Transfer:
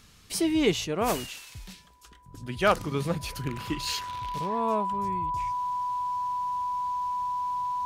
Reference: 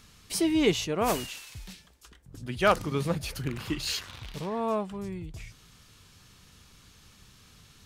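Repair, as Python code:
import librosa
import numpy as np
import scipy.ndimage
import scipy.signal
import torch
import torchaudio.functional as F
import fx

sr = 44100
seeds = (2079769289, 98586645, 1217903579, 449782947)

y = fx.notch(x, sr, hz=990.0, q=30.0)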